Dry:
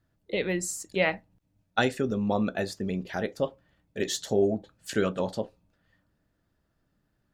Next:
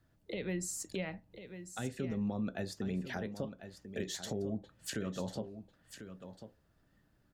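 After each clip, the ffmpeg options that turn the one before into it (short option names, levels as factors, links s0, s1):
-filter_complex "[0:a]acrossover=split=240[s0][s1];[s1]acompressor=threshold=0.0178:ratio=5[s2];[s0][s2]amix=inputs=2:normalize=0,alimiter=level_in=1.78:limit=0.0631:level=0:latency=1:release=385,volume=0.562,aecho=1:1:1045:0.282,volume=1.19"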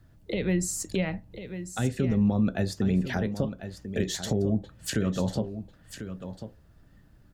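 -af "lowshelf=f=150:g=10.5,volume=2.51"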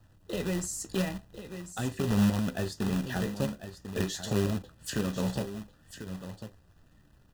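-filter_complex "[0:a]flanger=delay=9.3:depth=7:regen=52:speed=0.47:shape=triangular,acrossover=split=2700[s0][s1];[s0]acrusher=bits=2:mode=log:mix=0:aa=0.000001[s2];[s2][s1]amix=inputs=2:normalize=0,asuperstop=centerf=2200:order=20:qfactor=6.6"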